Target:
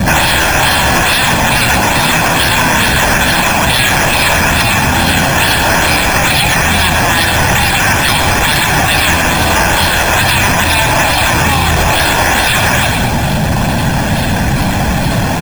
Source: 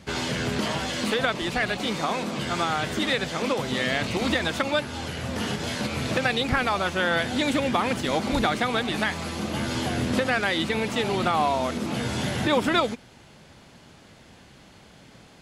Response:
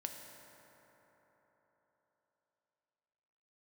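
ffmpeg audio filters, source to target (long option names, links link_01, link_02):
-filter_complex "[0:a]aeval=exprs='val(0)+0.5*0.0188*sgn(val(0))':channel_layout=same,afftfilt=real='re*lt(hypot(re,im),0.178)':imag='im*lt(hypot(re,im),0.178)':win_size=1024:overlap=0.75,afftdn=noise_reduction=21:noise_floor=-42,acrossover=split=350|790|6400[link_01][link_02][link_03][link_04];[link_02]acompressor=threshold=-47dB:ratio=5[link_05];[link_01][link_05][link_03][link_04]amix=inputs=4:normalize=0,acrusher=samples=9:mix=1:aa=0.000001:lfo=1:lforange=5.4:lforate=2.3,asoftclip=type=tanh:threshold=-24dB,aecho=1:1:1.2:0.53,asplit=5[link_06][link_07][link_08][link_09][link_10];[link_07]adelay=121,afreqshift=-34,volume=-6.5dB[link_11];[link_08]adelay=242,afreqshift=-68,volume=-15.9dB[link_12];[link_09]adelay=363,afreqshift=-102,volume=-25.2dB[link_13];[link_10]adelay=484,afreqshift=-136,volume=-34.6dB[link_14];[link_06][link_11][link_12][link_13][link_14]amix=inputs=5:normalize=0,alimiter=level_in=27dB:limit=-1dB:release=50:level=0:latency=1,volume=-1dB"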